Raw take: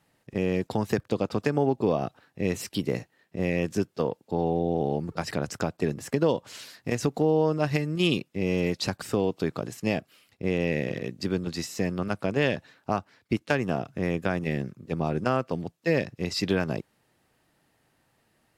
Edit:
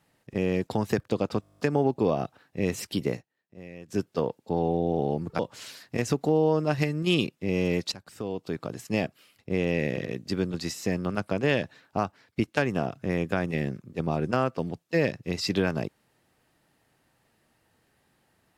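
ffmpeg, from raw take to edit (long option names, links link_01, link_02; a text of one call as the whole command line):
ffmpeg -i in.wav -filter_complex "[0:a]asplit=14[link_01][link_02][link_03][link_04][link_05][link_06][link_07][link_08][link_09][link_10][link_11][link_12][link_13][link_14];[link_01]atrim=end=1.432[link_15];[link_02]atrim=start=1.408:end=1.432[link_16];[link_03]atrim=start=1.408:end=1.432[link_17];[link_04]atrim=start=1.408:end=1.432[link_18];[link_05]atrim=start=1.408:end=1.432[link_19];[link_06]atrim=start=1.408:end=1.432[link_20];[link_07]atrim=start=1.408:end=1.432[link_21];[link_08]atrim=start=1.408:end=1.432[link_22];[link_09]atrim=start=1.408:end=1.432[link_23];[link_10]atrim=start=1.408:end=3.05,asetpts=PTS-STARTPTS,afade=type=out:start_time=1.512:duration=0.13:silence=0.141254[link_24];[link_11]atrim=start=3.05:end=3.69,asetpts=PTS-STARTPTS,volume=-17dB[link_25];[link_12]atrim=start=3.69:end=5.212,asetpts=PTS-STARTPTS,afade=type=in:duration=0.13:silence=0.141254[link_26];[link_13]atrim=start=6.318:end=8.85,asetpts=PTS-STARTPTS,afade=type=out:start_time=2.528:duration=0.004:curve=hsin:silence=0.11885[link_27];[link_14]atrim=start=8.85,asetpts=PTS-STARTPTS,afade=type=in:duration=1.07:silence=0.11885[link_28];[link_15][link_16]acrossfade=duration=0.004:curve1=hsin:curve2=hsin[link_29];[link_29][link_17]acrossfade=duration=0.004:curve1=hsin:curve2=hsin[link_30];[link_30][link_18]acrossfade=duration=0.004:curve1=hsin:curve2=hsin[link_31];[link_31][link_19]acrossfade=duration=0.004:curve1=hsin:curve2=hsin[link_32];[link_32][link_20]acrossfade=duration=0.004:curve1=hsin:curve2=hsin[link_33];[link_33][link_21]acrossfade=duration=0.004:curve1=hsin:curve2=hsin[link_34];[link_34][link_22]acrossfade=duration=0.004:curve1=hsin:curve2=hsin[link_35];[link_35][link_23]acrossfade=duration=0.004:curve1=hsin:curve2=hsin[link_36];[link_24][link_25][link_26]concat=n=3:v=0:a=1[link_37];[link_36][link_37]acrossfade=duration=0.004:curve1=hsin:curve2=hsin[link_38];[link_27][link_28]concat=n=2:v=0:a=1[link_39];[link_38][link_39]acrossfade=duration=0.004:curve1=hsin:curve2=hsin" out.wav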